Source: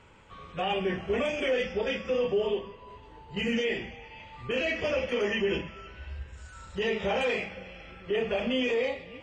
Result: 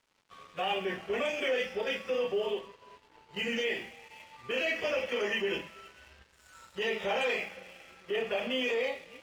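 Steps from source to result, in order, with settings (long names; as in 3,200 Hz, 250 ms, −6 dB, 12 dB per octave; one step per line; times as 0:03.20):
high-pass filter 490 Hz 6 dB per octave
dead-zone distortion −55 dBFS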